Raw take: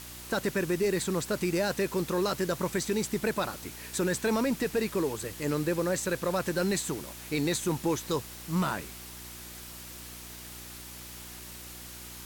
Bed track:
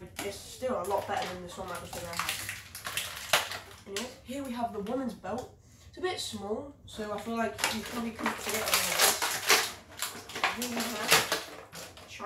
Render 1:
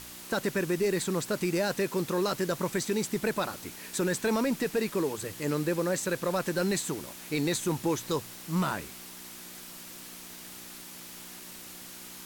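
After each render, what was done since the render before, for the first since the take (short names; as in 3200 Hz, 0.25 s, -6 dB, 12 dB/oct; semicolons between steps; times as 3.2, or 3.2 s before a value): de-hum 60 Hz, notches 2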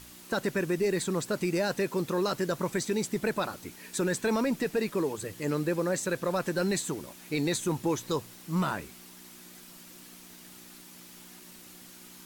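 denoiser 6 dB, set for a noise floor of -45 dBFS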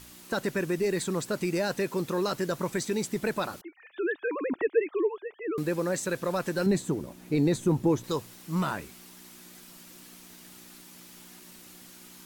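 3.61–5.58 sine-wave speech; 6.66–8.04 tilt shelf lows +7 dB, about 840 Hz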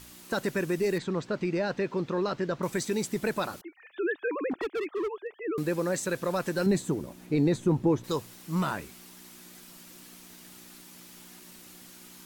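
0.98–2.63 air absorption 170 m; 4.51–5.43 overloaded stage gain 28 dB; 7.25–8.03 LPF 5600 Hz -> 2600 Hz 6 dB/oct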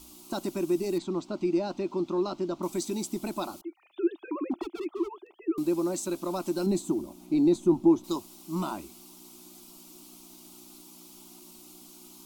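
fixed phaser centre 470 Hz, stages 6; small resonant body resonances 340/1800 Hz, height 8 dB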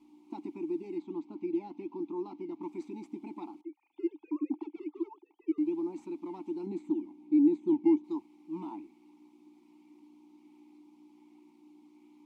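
in parallel at -11.5 dB: decimation with a swept rate 12×, swing 100% 1.3 Hz; on the sum: vowel filter u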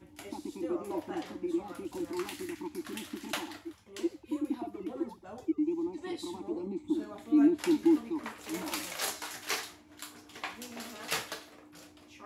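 add bed track -10.5 dB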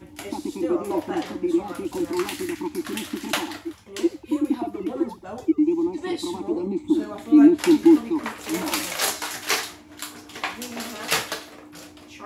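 gain +10.5 dB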